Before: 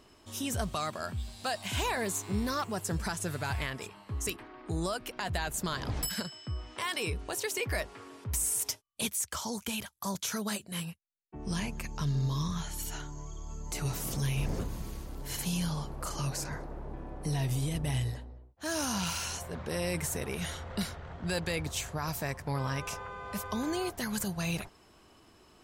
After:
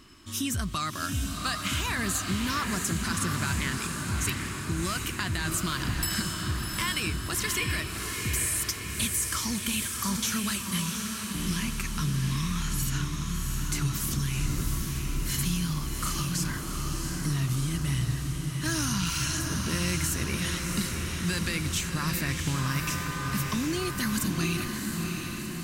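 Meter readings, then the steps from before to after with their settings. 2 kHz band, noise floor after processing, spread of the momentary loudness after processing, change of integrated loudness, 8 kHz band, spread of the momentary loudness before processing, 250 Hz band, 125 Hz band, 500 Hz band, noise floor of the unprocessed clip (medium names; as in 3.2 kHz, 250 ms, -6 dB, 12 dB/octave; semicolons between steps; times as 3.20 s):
+6.5 dB, -35 dBFS, 4 LU, +5.5 dB, +6.0 dB, 9 LU, +6.0 dB, +5.5 dB, -2.5 dB, -60 dBFS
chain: high-order bell 610 Hz -13.5 dB 1.3 oct; compression, threshold -33 dBFS, peak gain reduction 7 dB; on a send: echo that smears into a reverb 712 ms, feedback 63%, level -4 dB; on the sum: trim +7 dB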